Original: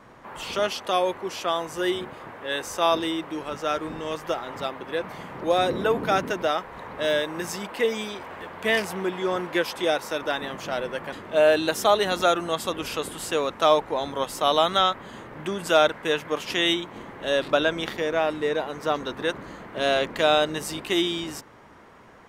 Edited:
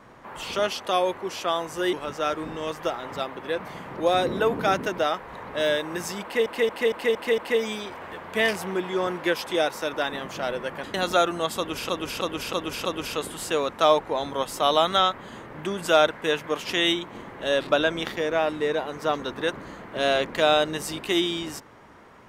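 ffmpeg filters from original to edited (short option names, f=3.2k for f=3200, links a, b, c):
-filter_complex "[0:a]asplit=12[a][b][c][d][e][f][g][h][i][j][k][l];[a]atrim=end=1.932[m];[b]atrim=start=3.368:end=7.902[n];[c]atrim=start=7.668:end=7.902[o];[d]atrim=start=7.668:end=7.902[p];[e]atrim=start=7.668:end=7.902[q];[f]atrim=start=7.668:end=7.902[r];[g]atrim=start=7.668:end=11.232[s];[h]atrim=start=12.028:end=12.982[t];[i]atrim=start=12.658:end=12.982[u];[j]atrim=start=12.658:end=12.982[v];[k]atrim=start=12.658:end=12.982[w];[l]atrim=start=12.658[x];[m][n]acrossfade=d=0.004:c1=hsin:c2=hsin[y];[y][o]acrossfade=d=0.004:c1=hsin:c2=hsin[z];[z][p]acrossfade=d=0.004:c1=hsin:c2=hsin[aa];[aa][q]acrossfade=d=0.004:c1=hsin:c2=hsin[ab];[ab][r]acrossfade=d=0.004:c1=hsin:c2=hsin[ac];[ac][s]acrossfade=d=0.004:c1=hsin:c2=hsin[ad];[ad][t]acrossfade=d=0.004:c1=hsin:c2=hsin[ae];[ae][u]acrossfade=d=0.004:c1=hsin:c2=hsin[af];[af][v]acrossfade=d=0.004:c1=hsin:c2=hsin[ag];[ag][w]acrossfade=d=0.004:c1=hsin:c2=hsin[ah];[ah][x]acrossfade=d=0.004:c1=hsin:c2=hsin"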